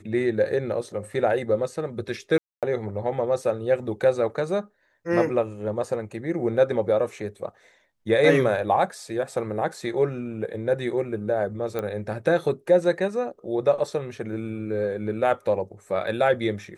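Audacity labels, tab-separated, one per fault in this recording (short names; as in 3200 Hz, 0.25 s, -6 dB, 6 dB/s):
2.380000	2.630000	gap 0.247 s
11.790000	11.790000	pop -16 dBFS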